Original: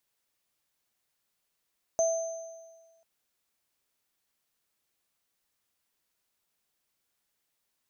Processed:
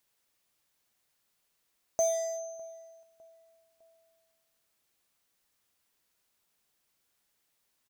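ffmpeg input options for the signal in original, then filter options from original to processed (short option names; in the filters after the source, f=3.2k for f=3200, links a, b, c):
-f lavfi -i "aevalsrc='0.0841*pow(10,-3*t/1.47)*sin(2*PI*658*t)+0.0335*pow(10,-3*t/1.31)*sin(2*PI*6240*t)':d=1.04:s=44100"
-filter_complex "[0:a]asplit=2[a][b];[b]aeval=exprs='0.015*(abs(mod(val(0)/0.015+3,4)-2)-1)':c=same,volume=-7.5dB[c];[a][c]amix=inputs=2:normalize=0,asplit=2[d][e];[e]adelay=605,lowpass=f=2k:p=1,volume=-23dB,asplit=2[f][g];[g]adelay=605,lowpass=f=2k:p=1,volume=0.49,asplit=2[h][i];[i]adelay=605,lowpass=f=2k:p=1,volume=0.49[j];[d][f][h][j]amix=inputs=4:normalize=0"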